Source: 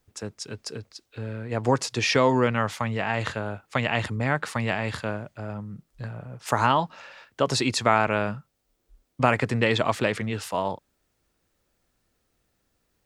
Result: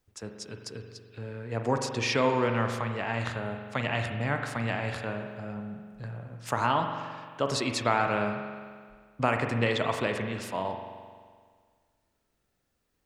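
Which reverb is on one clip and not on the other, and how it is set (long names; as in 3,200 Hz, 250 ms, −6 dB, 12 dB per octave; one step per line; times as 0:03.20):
spring reverb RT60 1.8 s, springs 43 ms, chirp 75 ms, DRR 4.5 dB
level −5.5 dB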